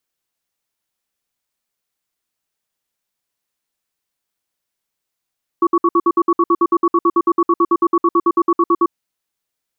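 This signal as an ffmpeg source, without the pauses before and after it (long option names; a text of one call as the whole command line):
ffmpeg -f lavfi -i "aevalsrc='0.237*(sin(2*PI*342*t)+sin(2*PI*1120*t))*clip(min(mod(t,0.11),0.05-mod(t,0.11))/0.005,0,1)':duration=3.24:sample_rate=44100" out.wav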